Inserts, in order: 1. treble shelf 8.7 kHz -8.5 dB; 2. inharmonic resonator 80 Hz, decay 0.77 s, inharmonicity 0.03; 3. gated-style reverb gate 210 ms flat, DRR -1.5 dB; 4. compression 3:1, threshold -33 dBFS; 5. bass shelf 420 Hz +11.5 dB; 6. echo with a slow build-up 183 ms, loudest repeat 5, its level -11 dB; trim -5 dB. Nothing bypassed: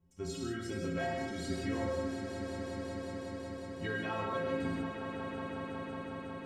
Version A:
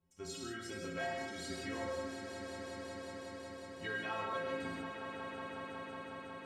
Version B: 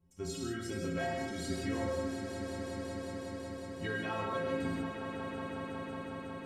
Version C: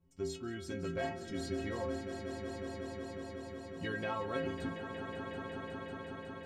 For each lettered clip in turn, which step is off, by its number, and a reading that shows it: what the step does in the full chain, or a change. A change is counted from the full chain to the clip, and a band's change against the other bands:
5, 125 Hz band -9.0 dB; 1, 8 kHz band +3.0 dB; 3, crest factor change +2.5 dB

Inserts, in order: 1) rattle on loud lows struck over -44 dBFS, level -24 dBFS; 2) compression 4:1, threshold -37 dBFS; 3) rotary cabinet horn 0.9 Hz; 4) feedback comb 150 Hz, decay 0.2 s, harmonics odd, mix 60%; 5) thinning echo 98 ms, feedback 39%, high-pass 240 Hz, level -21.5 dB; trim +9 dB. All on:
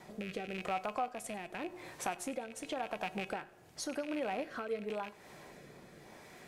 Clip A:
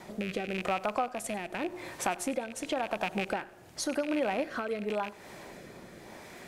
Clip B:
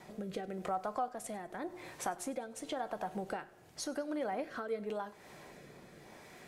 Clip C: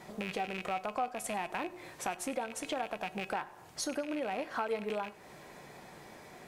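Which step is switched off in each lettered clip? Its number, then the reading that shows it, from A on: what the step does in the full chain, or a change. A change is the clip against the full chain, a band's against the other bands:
4, loudness change +6.5 LU; 1, 2 kHz band -4.0 dB; 3, 125 Hz band -2.0 dB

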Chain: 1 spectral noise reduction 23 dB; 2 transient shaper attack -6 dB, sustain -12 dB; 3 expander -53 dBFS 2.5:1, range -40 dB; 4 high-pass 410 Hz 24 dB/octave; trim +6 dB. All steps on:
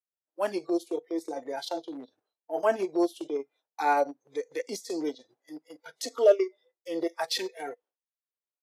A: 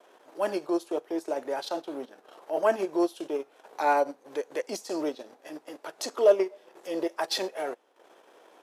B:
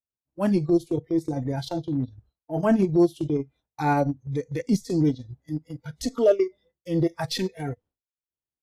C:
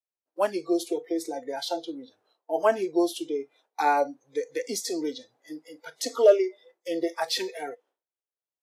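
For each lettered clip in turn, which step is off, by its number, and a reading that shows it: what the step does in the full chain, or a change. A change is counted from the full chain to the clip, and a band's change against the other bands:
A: 1, momentary loudness spread change -1 LU; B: 4, 250 Hz band +10.5 dB; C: 2, 8 kHz band +3.5 dB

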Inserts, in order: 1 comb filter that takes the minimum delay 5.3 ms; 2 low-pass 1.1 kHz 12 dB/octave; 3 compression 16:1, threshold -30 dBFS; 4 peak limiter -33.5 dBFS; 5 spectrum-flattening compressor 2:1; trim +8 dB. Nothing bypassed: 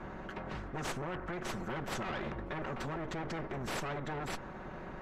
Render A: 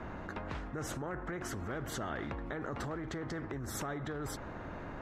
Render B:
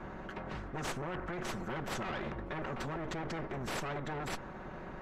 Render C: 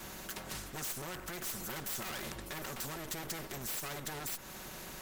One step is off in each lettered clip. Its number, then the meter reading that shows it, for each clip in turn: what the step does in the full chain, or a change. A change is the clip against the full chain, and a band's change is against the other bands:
1, momentary loudness spread change -1 LU; 3, mean gain reduction 3.0 dB; 2, 8 kHz band +16.0 dB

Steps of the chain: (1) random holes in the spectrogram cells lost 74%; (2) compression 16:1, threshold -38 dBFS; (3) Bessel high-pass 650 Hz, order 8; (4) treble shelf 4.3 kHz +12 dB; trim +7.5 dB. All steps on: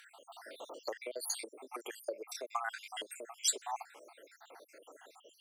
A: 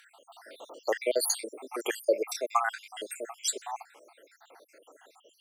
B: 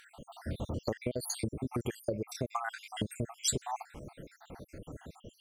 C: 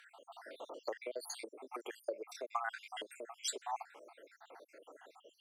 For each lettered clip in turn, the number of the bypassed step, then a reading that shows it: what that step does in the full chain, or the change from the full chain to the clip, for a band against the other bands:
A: 2, mean gain reduction 6.0 dB; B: 3, 250 Hz band +17.0 dB; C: 4, 8 kHz band -8.5 dB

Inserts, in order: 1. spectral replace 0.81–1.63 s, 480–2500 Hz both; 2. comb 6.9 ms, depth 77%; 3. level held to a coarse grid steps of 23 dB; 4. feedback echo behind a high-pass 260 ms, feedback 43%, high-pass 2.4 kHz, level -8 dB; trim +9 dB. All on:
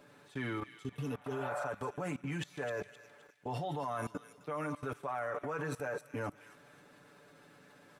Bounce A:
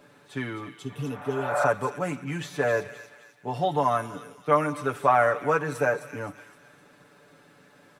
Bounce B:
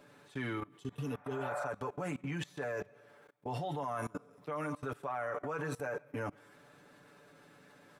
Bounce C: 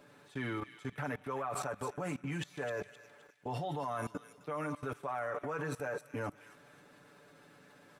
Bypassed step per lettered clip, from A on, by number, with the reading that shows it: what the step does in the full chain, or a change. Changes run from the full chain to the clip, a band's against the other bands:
3, crest factor change +6.0 dB; 4, echo-to-direct -13.5 dB to none; 1, 8 kHz band +3.5 dB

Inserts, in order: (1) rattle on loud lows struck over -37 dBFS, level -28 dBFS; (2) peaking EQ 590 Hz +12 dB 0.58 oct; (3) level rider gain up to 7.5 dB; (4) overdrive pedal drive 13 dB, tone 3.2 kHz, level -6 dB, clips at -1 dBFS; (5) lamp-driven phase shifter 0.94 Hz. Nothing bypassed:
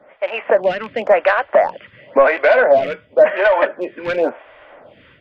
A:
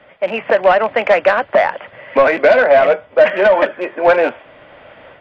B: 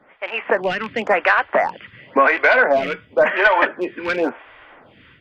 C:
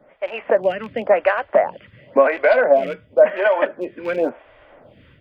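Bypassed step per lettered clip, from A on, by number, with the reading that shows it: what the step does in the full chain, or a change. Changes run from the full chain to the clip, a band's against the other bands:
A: 5, crest factor change -2.0 dB; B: 2, 500 Hz band -8.0 dB; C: 4, crest factor change +2.5 dB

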